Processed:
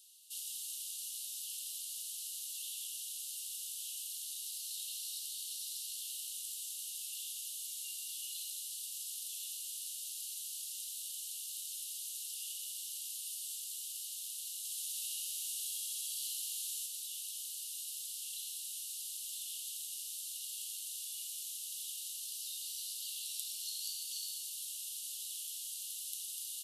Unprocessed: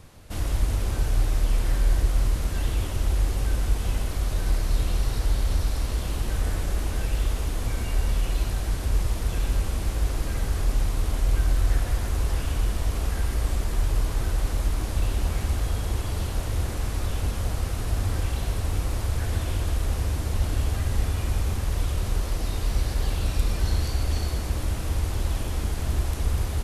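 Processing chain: rippled Chebyshev high-pass 2.8 kHz, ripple 3 dB; treble shelf 5.2 kHz +10.5 dB; 14.58–16.86 s: flutter echo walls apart 11.1 m, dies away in 1.3 s; trim -6 dB

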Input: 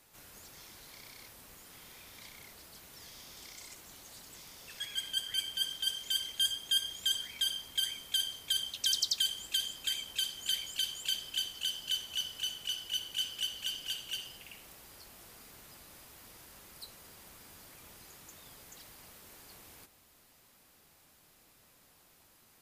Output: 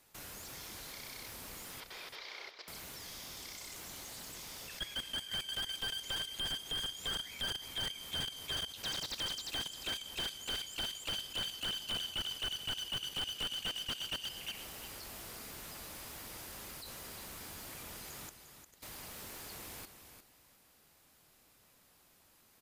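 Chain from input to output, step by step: 1.80–2.68 s: elliptic band-pass 390–5000 Hz; 18.29–18.83 s: gate -50 dBFS, range -21 dB; level held to a coarse grid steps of 19 dB; feedback delay 353 ms, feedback 22%, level -9.5 dB; slew-rate limiter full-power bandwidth 19 Hz; trim +9 dB

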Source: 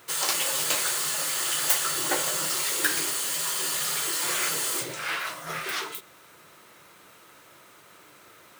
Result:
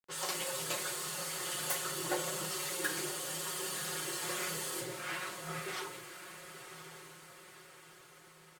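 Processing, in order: level-controlled noise filter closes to 910 Hz, open at -26 dBFS; tilt shelf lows +5 dB, about 710 Hz; hum notches 50/100/150/200/250/300/350 Hz; comb 5.5 ms, depth 78%; small samples zeroed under -46.5 dBFS; on a send: echo that smears into a reverb 1052 ms, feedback 52%, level -10 dB; on the sum: trim -9 dB

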